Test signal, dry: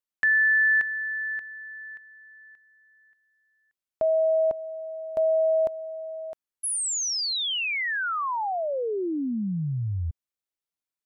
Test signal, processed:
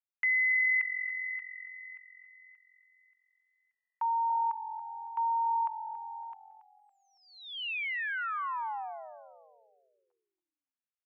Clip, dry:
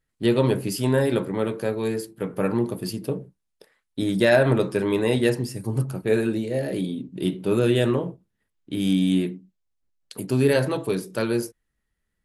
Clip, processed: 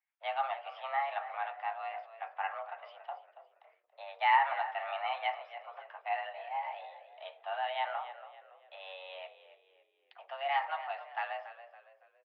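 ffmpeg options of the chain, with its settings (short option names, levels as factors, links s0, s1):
-filter_complex "[0:a]highpass=f=520:t=q:w=0.5412,highpass=f=520:t=q:w=1.307,lowpass=f=2700:t=q:w=0.5176,lowpass=f=2700:t=q:w=0.7071,lowpass=f=2700:t=q:w=1.932,afreqshift=280,asplit=5[s0][s1][s2][s3][s4];[s1]adelay=280,afreqshift=-44,volume=0.211[s5];[s2]adelay=560,afreqshift=-88,volume=0.0822[s6];[s3]adelay=840,afreqshift=-132,volume=0.032[s7];[s4]adelay=1120,afreqshift=-176,volume=0.0126[s8];[s0][s5][s6][s7][s8]amix=inputs=5:normalize=0,volume=0.473"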